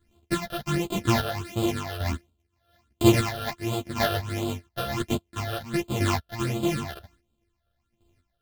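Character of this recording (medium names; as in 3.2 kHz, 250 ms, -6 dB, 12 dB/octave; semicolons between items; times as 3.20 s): a buzz of ramps at a fixed pitch in blocks of 128 samples; phasing stages 8, 1.4 Hz, lowest notch 280–1800 Hz; chopped level 1 Hz, depth 60%, duty 20%; a shimmering, thickened sound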